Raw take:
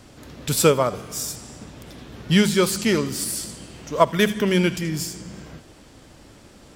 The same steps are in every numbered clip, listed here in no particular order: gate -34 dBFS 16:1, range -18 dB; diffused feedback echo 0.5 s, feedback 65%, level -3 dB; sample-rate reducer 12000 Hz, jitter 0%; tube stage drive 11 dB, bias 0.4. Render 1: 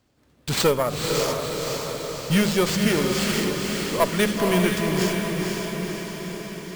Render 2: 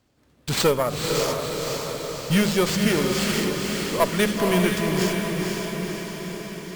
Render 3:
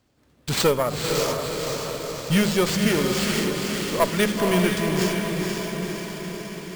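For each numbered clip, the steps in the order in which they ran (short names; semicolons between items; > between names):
gate > tube stage > sample-rate reducer > diffused feedback echo; sample-rate reducer > tube stage > gate > diffused feedback echo; tube stage > gate > diffused feedback echo > sample-rate reducer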